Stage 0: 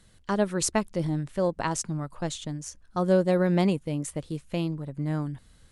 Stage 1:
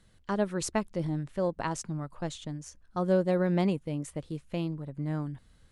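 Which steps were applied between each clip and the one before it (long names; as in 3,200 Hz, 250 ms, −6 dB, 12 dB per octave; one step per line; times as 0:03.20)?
high-shelf EQ 4,900 Hz −6.5 dB
level −3.5 dB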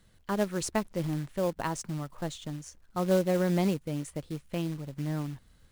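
floating-point word with a short mantissa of 2 bits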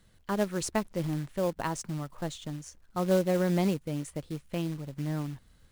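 no processing that can be heard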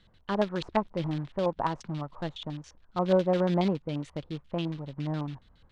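auto-filter low-pass square 7.2 Hz 960–3,600 Hz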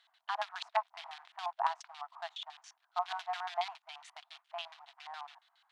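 linear-phase brick-wall high-pass 650 Hz
level −1.5 dB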